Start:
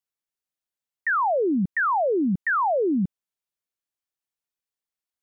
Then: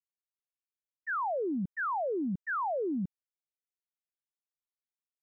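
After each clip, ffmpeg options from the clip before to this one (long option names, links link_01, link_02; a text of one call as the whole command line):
ffmpeg -i in.wav -af "agate=range=-33dB:threshold=-15dB:ratio=3:detection=peak" out.wav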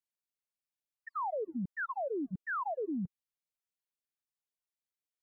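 ffmpeg -i in.wav -af "afftfilt=real='re*(1-between(b*sr/1024,220*pow(1600/220,0.5+0.5*sin(2*PI*3.8*pts/sr))/1.41,220*pow(1600/220,0.5+0.5*sin(2*PI*3.8*pts/sr))*1.41))':imag='im*(1-between(b*sr/1024,220*pow(1600/220,0.5+0.5*sin(2*PI*3.8*pts/sr))/1.41,220*pow(1600/220,0.5+0.5*sin(2*PI*3.8*pts/sr))*1.41))':win_size=1024:overlap=0.75,volume=-2.5dB" out.wav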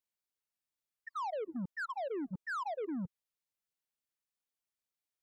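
ffmpeg -i in.wav -af "aeval=exprs='0.0299*(cos(1*acos(clip(val(0)/0.0299,-1,1)))-cos(1*PI/2))+0.00266*(cos(5*acos(clip(val(0)/0.0299,-1,1)))-cos(5*PI/2))+0.000841*(cos(7*acos(clip(val(0)/0.0299,-1,1)))-cos(7*PI/2))':channel_layout=same,volume=-2dB" out.wav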